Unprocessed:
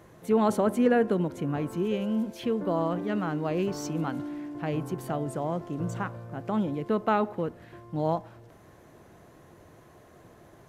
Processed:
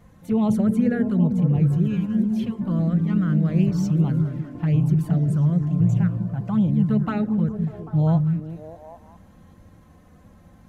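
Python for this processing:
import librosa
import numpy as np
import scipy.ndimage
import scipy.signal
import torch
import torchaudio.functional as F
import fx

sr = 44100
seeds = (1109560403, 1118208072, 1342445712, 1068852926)

y = fx.low_shelf_res(x, sr, hz=220.0, db=12.5, q=1.5)
y = fx.rider(y, sr, range_db=4, speed_s=2.0)
y = fx.env_flanger(y, sr, rest_ms=4.5, full_db=-15.5)
y = fx.echo_stepped(y, sr, ms=198, hz=180.0, octaves=0.7, feedback_pct=70, wet_db=-2)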